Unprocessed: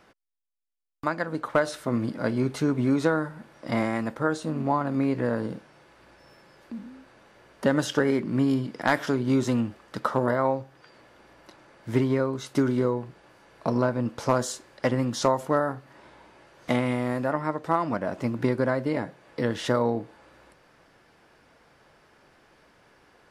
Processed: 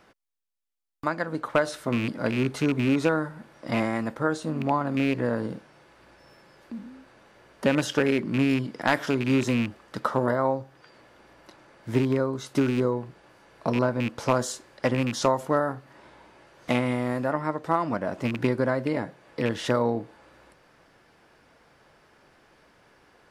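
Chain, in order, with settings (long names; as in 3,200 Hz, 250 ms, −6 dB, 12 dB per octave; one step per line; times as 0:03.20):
loose part that buzzes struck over −28 dBFS, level −21 dBFS
0:10.31–0:12.92: dynamic equaliser 2,500 Hz, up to −6 dB, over −46 dBFS, Q 1.7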